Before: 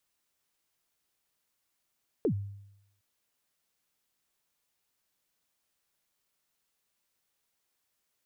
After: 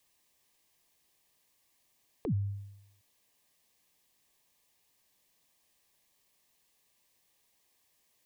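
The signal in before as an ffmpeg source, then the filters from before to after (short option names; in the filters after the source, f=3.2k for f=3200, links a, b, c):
-f lavfi -i "aevalsrc='0.0794*pow(10,-3*t/0.83)*sin(2*PI*(500*0.086/log(100/500)*(exp(log(100/500)*min(t,0.086)/0.086)-1)+100*max(t-0.086,0)))':d=0.76:s=44100"
-filter_complex "[0:a]acrossover=split=210[a][b];[b]acompressor=threshold=-46dB:ratio=6[c];[a][c]amix=inputs=2:normalize=0,asuperstop=centerf=1400:order=4:qfactor=3.9,asplit=2[d][e];[e]alimiter=level_in=14.5dB:limit=-24dB:level=0:latency=1,volume=-14.5dB,volume=2dB[f];[d][f]amix=inputs=2:normalize=0"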